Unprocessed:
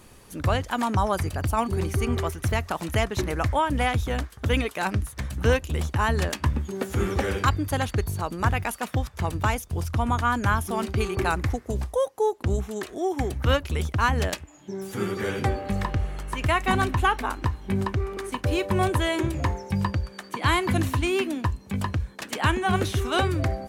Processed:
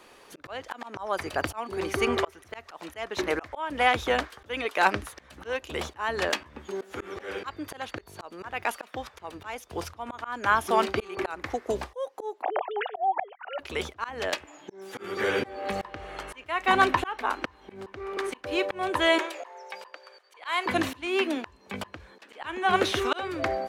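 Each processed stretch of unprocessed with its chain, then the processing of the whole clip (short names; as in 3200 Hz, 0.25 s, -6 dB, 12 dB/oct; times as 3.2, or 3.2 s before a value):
12.42–13.59 sine-wave speech + compressor 5:1, threshold -26 dBFS + resonant high-pass 740 Hz, resonance Q 6.5
15.04–15.88 high shelf 9500 Hz +5 dB + three-band squash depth 100%
19.18–20.66 HPF 480 Hz 24 dB/oct + three-band expander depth 40%
whole clip: three-band isolator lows -22 dB, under 320 Hz, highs -12 dB, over 5100 Hz; AGC gain up to 4.5 dB; auto swell 0.439 s; gain +2.5 dB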